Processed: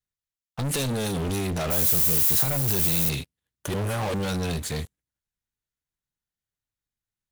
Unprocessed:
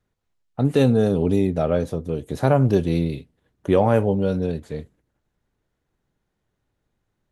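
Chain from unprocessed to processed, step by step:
0:01.70–0:03.08: background noise violet −38 dBFS
brickwall limiter −14.5 dBFS, peak gain reduction 10.5 dB
guitar amp tone stack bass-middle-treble 5-5-5
leveller curve on the samples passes 5
high-shelf EQ 5,300 Hz +8 dB
0:03.74–0:04.14: reverse
level +4.5 dB

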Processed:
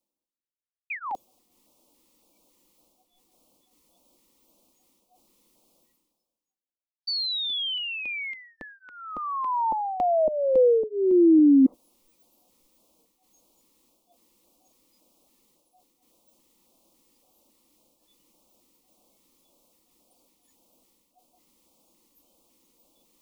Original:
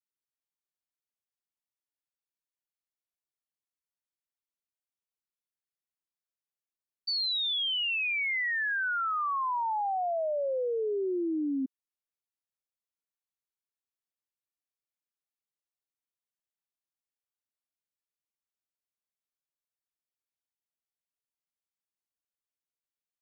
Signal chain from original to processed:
noise reduction from a noise print of the clip's start 28 dB
parametric band 700 Hz +14 dB 2 octaves
sound drawn into the spectrogram fall, 0:00.90–0:01.15, 730–2,600 Hz −24 dBFS
reversed playback
upward compression, threshold −22 dBFS
reversed playback
auto-filter notch square 1.8 Hz 670–1,800 Hz
low shelf with overshoot 550 Hz +7.5 dB, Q 3
phaser with its sweep stopped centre 420 Hz, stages 6

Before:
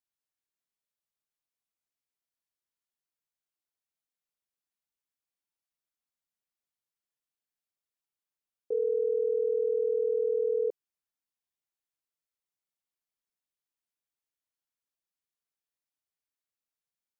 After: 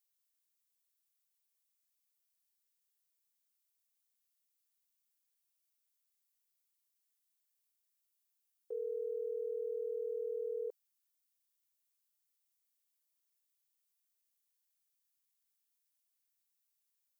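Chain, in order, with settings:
spectral tilt +4.5 dB per octave
level −6 dB

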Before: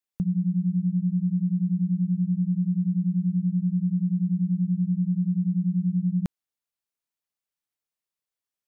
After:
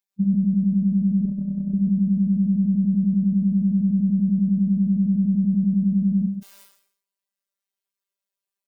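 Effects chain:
harmonic-percussive split with one part muted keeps harmonic
low-shelf EQ 150 Hz −5 dB
0:01.25–0:01.74: compressor whose output falls as the input rises −30 dBFS, ratio −0.5
phases set to zero 197 Hz
single-tap delay 134 ms −9 dB
level that may fall only so fast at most 92 dB per second
level +7.5 dB

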